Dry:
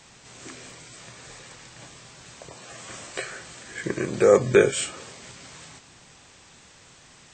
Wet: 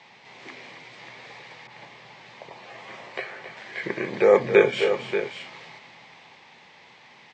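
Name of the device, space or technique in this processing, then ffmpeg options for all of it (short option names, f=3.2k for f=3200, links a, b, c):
kitchen radio: -filter_complex "[0:a]highpass=200,equalizer=f=290:t=q:w=4:g=-6,equalizer=f=870:t=q:w=4:g=8,equalizer=f=1.4k:t=q:w=4:g=-6,equalizer=f=2.1k:t=q:w=4:g=8,lowpass=f=4.3k:w=0.5412,lowpass=f=4.3k:w=1.3066,aecho=1:1:268|584:0.316|0.355,asettb=1/sr,asplit=3[a][b][c];[a]atrim=end=1.674[d];[b]atrim=start=1.67:end=3.57,asetpts=PTS-STARTPTS,afade=t=in:d=0.004:c=qsin,afade=t=out:st=1.896:d=0.004:c=qsin,adynamicequalizer=threshold=0.00447:dfrequency=1900:dqfactor=0.7:tfrequency=1900:tqfactor=0.7:attack=5:release=100:ratio=0.375:range=3:mode=cutabove:tftype=highshelf[e];[c]atrim=start=3.566[f];[d][e]acrossfade=d=0.004:c1=hsin:c2=qsin[g];[g][f]acrossfade=d=0.004:c1=qsin:c2=hsin"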